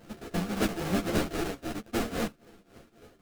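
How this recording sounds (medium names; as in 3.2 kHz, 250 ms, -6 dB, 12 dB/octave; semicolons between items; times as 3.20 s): a buzz of ramps at a fixed pitch in blocks of 64 samples; tremolo triangle 3.7 Hz, depth 90%; aliases and images of a low sample rate 1 kHz, jitter 20%; a shimmering, thickened sound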